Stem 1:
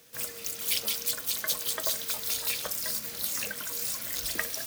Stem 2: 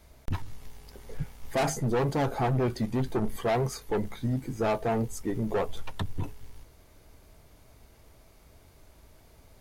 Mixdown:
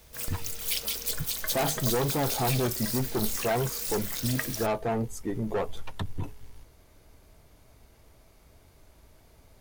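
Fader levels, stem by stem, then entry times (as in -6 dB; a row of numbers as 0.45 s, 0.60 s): -1.5 dB, -1.0 dB; 0.00 s, 0.00 s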